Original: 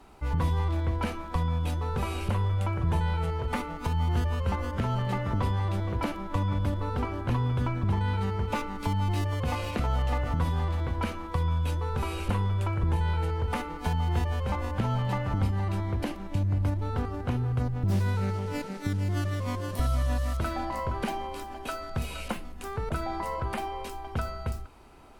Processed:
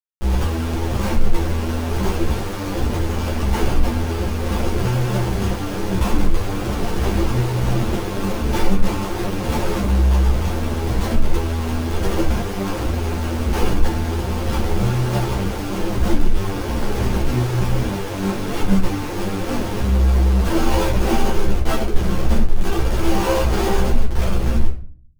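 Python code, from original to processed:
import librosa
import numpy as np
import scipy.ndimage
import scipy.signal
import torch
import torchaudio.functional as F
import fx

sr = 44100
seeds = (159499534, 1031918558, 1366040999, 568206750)

p1 = fx.halfwave_hold(x, sr)
p2 = fx.sample_hold(p1, sr, seeds[0], rate_hz=1900.0, jitter_pct=0)
p3 = p1 + F.gain(torch.from_numpy(p2), -11.5).numpy()
p4 = fx.schmitt(p3, sr, flips_db=-32.5)
p5 = fx.room_shoebox(p4, sr, seeds[1], volume_m3=37.0, walls='mixed', distance_m=0.86)
p6 = fx.ensemble(p5, sr)
y = F.gain(torch.from_numpy(p6), -1.0).numpy()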